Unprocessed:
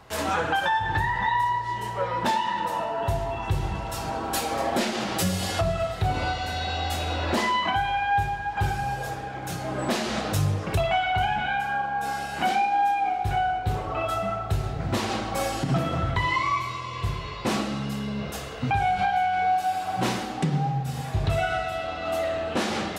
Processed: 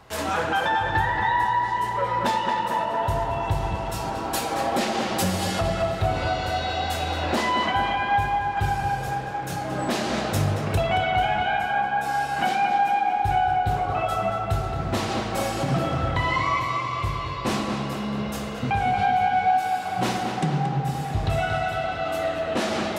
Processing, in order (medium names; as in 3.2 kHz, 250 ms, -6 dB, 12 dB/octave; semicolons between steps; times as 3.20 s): tape echo 227 ms, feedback 76%, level -3.5 dB, low-pass 2.9 kHz